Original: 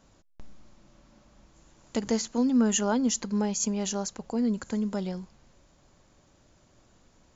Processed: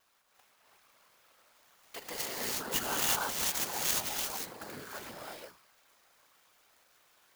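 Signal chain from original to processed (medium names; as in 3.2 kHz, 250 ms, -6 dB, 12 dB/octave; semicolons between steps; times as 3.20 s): high-pass 1.1 kHz 12 dB/octave; gated-style reverb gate 380 ms rising, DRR -5 dB; whisper effect; vibrato 0.7 Hz 7.7 cents; sampling jitter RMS 0.036 ms; trim -3 dB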